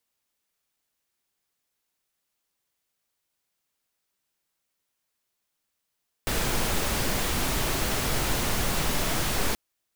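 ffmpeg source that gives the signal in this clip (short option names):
-f lavfi -i "anoisesrc=c=pink:a=0.257:d=3.28:r=44100:seed=1"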